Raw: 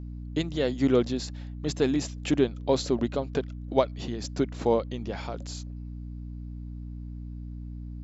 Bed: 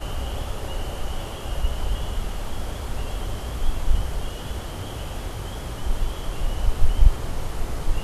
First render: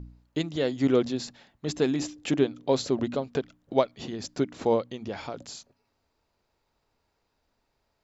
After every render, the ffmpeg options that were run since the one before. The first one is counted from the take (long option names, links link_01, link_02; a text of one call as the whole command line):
ffmpeg -i in.wav -af "bandreject=frequency=60:width_type=h:width=4,bandreject=frequency=120:width_type=h:width=4,bandreject=frequency=180:width_type=h:width=4,bandreject=frequency=240:width_type=h:width=4,bandreject=frequency=300:width_type=h:width=4" out.wav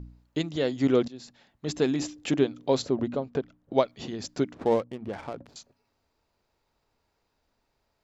ffmpeg -i in.wav -filter_complex "[0:a]asettb=1/sr,asplit=3[link_01][link_02][link_03];[link_01]atrim=end=2.824[link_04];[link_02]atrim=start=2.82:end=3.74,asetpts=PTS-STARTPTS,afade=type=in:duration=0.004:curve=qsin,afade=type=out:start_time=0.916:duration=0.004:curve=qsin,highshelf=frequency=2400:gain=-11.5[link_05];[link_03]atrim=start=3.736[link_06];[link_04][link_05]acrossfade=duration=0.004:curve1=hsin:curve2=qsin[link_07];[link_07][link_06]acrossfade=duration=0.004:curve1=qsin:curve2=hsin,asettb=1/sr,asplit=3[link_08][link_09][link_10];[link_08]atrim=end=4.544[link_11];[link_09]atrim=start=4.54:end=5.56,asetpts=PTS-STARTPTS,afade=type=in:duration=0.004:curve=qsin,afade=type=out:start_time=1.016:duration=0.004:curve=qsin,adynamicsmooth=sensitivity=7.5:basefreq=630[link_12];[link_10]atrim=start=5.556[link_13];[link_11][link_12]acrossfade=duration=0.004:curve1=hsin:curve2=qsin[link_14];[link_14][link_13]acrossfade=duration=0.004:curve1=qsin:curve2=hsin,asplit=2[link_15][link_16];[link_15]atrim=end=1.08,asetpts=PTS-STARTPTS,afade=type=out:start_time=1.076:duration=0.004:curve=hsin:silence=0.133352[link_17];[link_16]atrim=start=1.08,asetpts=PTS-STARTPTS,afade=type=in:duration=0.66:silence=0.133352[link_18];[link_17][link_18]concat=n=2:v=0:a=1" out.wav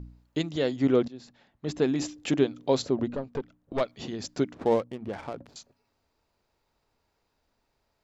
ffmpeg -i in.wav -filter_complex "[0:a]asettb=1/sr,asplit=3[link_01][link_02][link_03];[link_01]atrim=end=0.764[link_04];[link_02]atrim=start=0.76:end=1.96,asetpts=PTS-STARTPTS,afade=type=in:duration=0.004:curve=qsin,afade=type=out:start_time=1.196:duration=0.004:curve=qsin,highshelf=frequency=3900:gain=-9[link_05];[link_03]atrim=start=1.956[link_06];[link_04][link_05]acrossfade=duration=0.004:curve1=hsin:curve2=qsin[link_07];[link_07][link_06]acrossfade=duration=0.004:curve1=qsin:curve2=hsin,asplit=3[link_08][link_09][link_10];[link_08]afade=type=out:start_time=3.08:duration=0.02[link_11];[link_09]aeval=exprs='(tanh(14.1*val(0)+0.5)-tanh(0.5))/14.1':channel_layout=same,afade=type=in:start_time=3.08:duration=0.02,afade=type=out:start_time=3.8:duration=0.02[link_12];[link_10]afade=type=in:start_time=3.8:duration=0.02[link_13];[link_11][link_12][link_13]amix=inputs=3:normalize=0" out.wav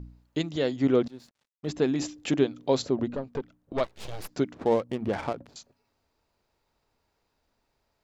ffmpeg -i in.wav -filter_complex "[0:a]asettb=1/sr,asplit=3[link_01][link_02][link_03];[link_01]atrim=end=1.054[link_04];[link_02]atrim=start=1.05:end=1.67,asetpts=PTS-STARTPTS,afade=type=in:duration=0.004:curve=qsin,afade=type=out:start_time=0.616:duration=0.004:curve=qsin,aeval=exprs='sgn(val(0))*max(abs(val(0))-0.0015,0)':channel_layout=same[link_05];[link_03]atrim=start=1.666[link_06];[link_04][link_05]acrossfade=duration=0.004:curve1=hsin:curve2=qsin[link_07];[link_07][link_06]acrossfade=duration=0.004:curve1=qsin:curve2=hsin,asplit=3[link_08][link_09][link_10];[link_08]afade=type=out:start_time=3.83:duration=0.02[link_11];[link_09]aeval=exprs='abs(val(0))':channel_layout=same,afade=type=in:start_time=3.83:duration=0.02,afade=type=out:start_time=4.29:duration=0.02[link_12];[link_10]afade=type=in:start_time=4.29:duration=0.02[link_13];[link_11][link_12][link_13]amix=inputs=3:normalize=0,asettb=1/sr,asplit=3[link_14][link_15][link_16];[link_14]atrim=end=4.894[link_17];[link_15]atrim=start=4.89:end=5.33,asetpts=PTS-STARTPTS,afade=type=in:duration=0.004:curve=qsin,afade=type=out:start_time=0.436:duration=0.004:curve=qsin,acontrast=68[link_18];[link_16]atrim=start=5.326[link_19];[link_17][link_18]acrossfade=duration=0.004:curve1=hsin:curve2=qsin[link_20];[link_20][link_19]acrossfade=duration=0.004:curve1=qsin:curve2=hsin" out.wav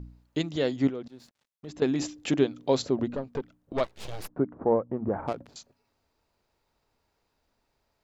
ffmpeg -i in.wav -filter_complex "[0:a]asettb=1/sr,asplit=3[link_01][link_02][link_03];[link_01]atrim=end=0.894[link_04];[link_02]atrim=start=0.89:end=1.82,asetpts=PTS-STARTPTS,afade=type=in:duration=0.004:curve=qsin,afade=type=out:start_time=0.926:duration=0.004:curve=qsin,acompressor=threshold=-44dB:ratio=2:attack=3.2:release=140:knee=1:detection=peak[link_05];[link_03]atrim=start=1.816[link_06];[link_04][link_05]acrossfade=duration=0.004:curve1=hsin:curve2=qsin[link_07];[link_07][link_06]acrossfade=duration=0.004:curve1=qsin:curve2=hsin,asplit=3[link_08][link_09][link_10];[link_08]afade=type=out:start_time=4.27:duration=0.02[link_11];[link_09]lowpass=frequency=1300:width=0.5412,lowpass=frequency=1300:width=1.3066,afade=type=in:start_time=4.27:duration=0.02,afade=type=out:start_time=5.27:duration=0.02[link_12];[link_10]afade=type=in:start_time=5.27:duration=0.02[link_13];[link_11][link_12][link_13]amix=inputs=3:normalize=0" out.wav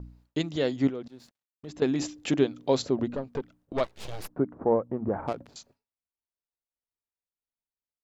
ffmpeg -i in.wav -af "agate=range=-33dB:threshold=-56dB:ratio=3:detection=peak" out.wav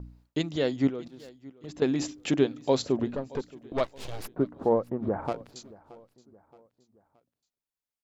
ffmpeg -i in.wav -af "aecho=1:1:623|1246|1869:0.0841|0.0379|0.017" out.wav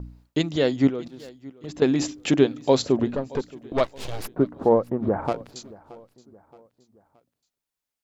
ffmpeg -i in.wav -af "volume=5.5dB" out.wav